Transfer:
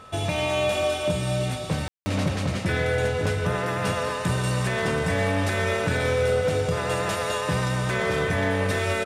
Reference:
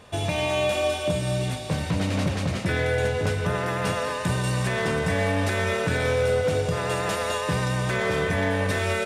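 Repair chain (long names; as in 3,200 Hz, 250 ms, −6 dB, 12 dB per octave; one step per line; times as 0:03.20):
notch filter 1,300 Hz, Q 30
ambience match 0:01.88–0:02.06
echo removal 539 ms −14.5 dB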